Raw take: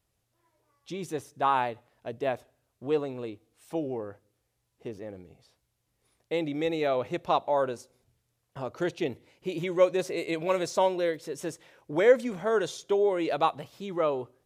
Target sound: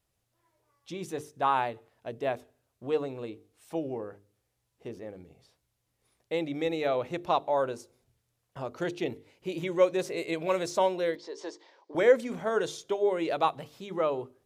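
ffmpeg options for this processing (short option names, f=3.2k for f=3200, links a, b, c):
-filter_complex "[0:a]asettb=1/sr,asplit=3[a][b][c];[a]atrim=end=11.154[d];[b]atrim=start=11.15:end=11.95,asetpts=PTS-STARTPTS,afade=t=in:d=0.004:c=qsin,afade=t=out:st=0.796:d=0.004:c=qsin,highpass=f=340:w=0.5412,highpass=f=340:w=1.3066,equalizer=f=500:t=q:w=4:g=-3,equalizer=f=960:t=q:w=4:g=7,equalizer=f=1.4k:t=q:w=4:g=-7,equalizer=f=2.6k:t=q:w=4:g=-8,equalizer=f=4.6k:t=q:w=4:g=7,lowpass=f=5.8k:w=0.5412,lowpass=f=5.8k:w=1.3066[e];[c]atrim=start=11.946[f];[d][e]acrossfade=d=0.004:c1=hsin:c2=qsin[g];[g][f]acrossfade=d=0.004:c1=qsin:c2=hsin,bandreject=f=50:t=h:w=6,bandreject=f=100:t=h:w=6,bandreject=f=150:t=h:w=6,bandreject=f=200:t=h:w=6,bandreject=f=250:t=h:w=6,bandreject=f=300:t=h:w=6,bandreject=f=350:t=h:w=6,bandreject=f=400:t=h:w=6,bandreject=f=450:t=h:w=6,volume=-1dB"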